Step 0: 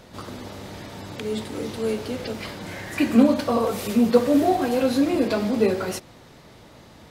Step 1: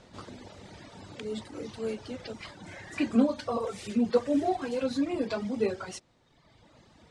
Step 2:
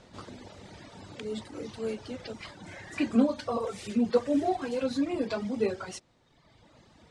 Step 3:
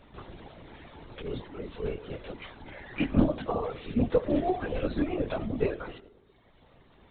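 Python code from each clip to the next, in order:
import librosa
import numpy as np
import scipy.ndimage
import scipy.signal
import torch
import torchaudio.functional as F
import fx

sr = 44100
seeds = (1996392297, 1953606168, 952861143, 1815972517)

y1 = scipy.signal.sosfilt(scipy.signal.butter(6, 9100.0, 'lowpass', fs=sr, output='sos'), x)
y1 = fx.dereverb_blind(y1, sr, rt60_s=1.4)
y1 = y1 * librosa.db_to_amplitude(-7.0)
y2 = y1
y3 = fx.rev_freeverb(y2, sr, rt60_s=1.1, hf_ratio=0.25, predelay_ms=25, drr_db=17.0)
y3 = fx.lpc_vocoder(y3, sr, seeds[0], excitation='whisper', order=16)
y3 = fx.doppler_dist(y3, sr, depth_ms=0.2)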